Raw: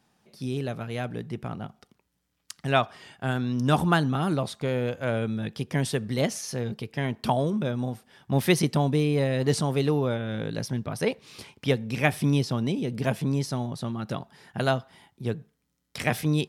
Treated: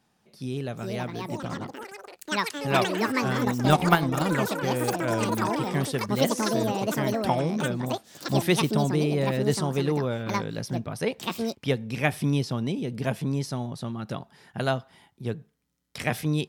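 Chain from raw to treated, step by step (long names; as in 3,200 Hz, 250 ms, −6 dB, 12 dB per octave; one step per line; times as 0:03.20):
delay with pitch and tempo change per echo 550 ms, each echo +7 semitones, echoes 3
0:03.45–0:04.35: transient designer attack +9 dB, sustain −7 dB
level −1.5 dB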